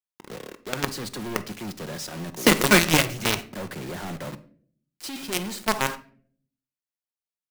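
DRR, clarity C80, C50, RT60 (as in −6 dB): 10.0 dB, 20.5 dB, 16.0 dB, 0.50 s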